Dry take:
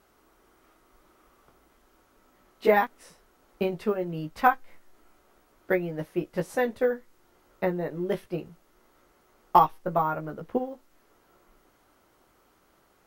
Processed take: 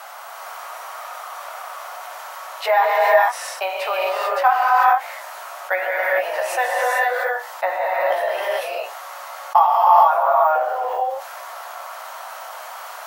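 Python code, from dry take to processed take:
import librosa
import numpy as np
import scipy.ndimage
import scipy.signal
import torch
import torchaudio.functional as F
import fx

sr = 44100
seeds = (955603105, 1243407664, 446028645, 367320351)

y = scipy.signal.sosfilt(scipy.signal.butter(8, 660.0, 'highpass', fs=sr, output='sos'), x)
y = fx.tilt_shelf(y, sr, db=5.5, hz=920.0)
y = fx.rev_gated(y, sr, seeds[0], gate_ms=470, shape='rising', drr_db=-5.5)
y = fx.env_flatten(y, sr, amount_pct=50)
y = y * librosa.db_to_amplitude(2.5)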